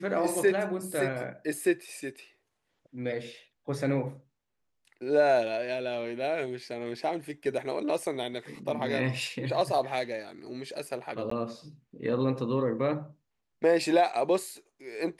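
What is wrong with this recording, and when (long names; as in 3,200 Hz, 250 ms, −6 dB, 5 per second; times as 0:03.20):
0:11.30–0:11.31: drop-out 14 ms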